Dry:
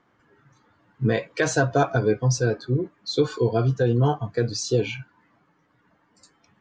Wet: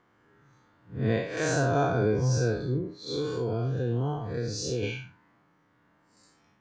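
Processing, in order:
spectrum smeared in time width 156 ms
0:02.77–0:04.83: downward compressor 2.5 to 1, threshold −28 dBFS, peak gain reduction 7 dB

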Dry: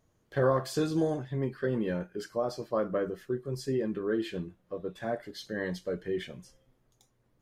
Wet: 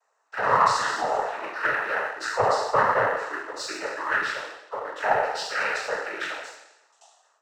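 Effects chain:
peak hold with a decay on every bin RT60 1.01 s
Butterworth high-pass 480 Hz 36 dB per octave
mid-hump overdrive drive 18 dB, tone 1,800 Hz, clips at −15 dBFS
phaser with its sweep stopped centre 1,100 Hz, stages 4
cochlear-implant simulation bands 12
in parallel at −7 dB: dead-zone distortion −51 dBFS
on the sum: harmonic generator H 8 −39 dB, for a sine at −11.5 dBFS
automatic gain control gain up to 6.5 dB

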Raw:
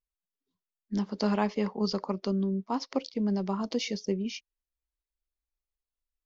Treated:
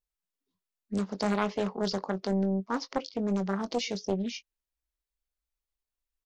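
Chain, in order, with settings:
double-tracking delay 21 ms −11 dB
highs frequency-modulated by the lows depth 0.59 ms

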